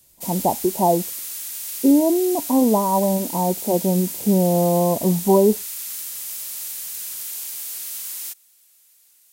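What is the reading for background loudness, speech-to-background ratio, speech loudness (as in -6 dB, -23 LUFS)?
-28.0 LUFS, 8.5 dB, -19.5 LUFS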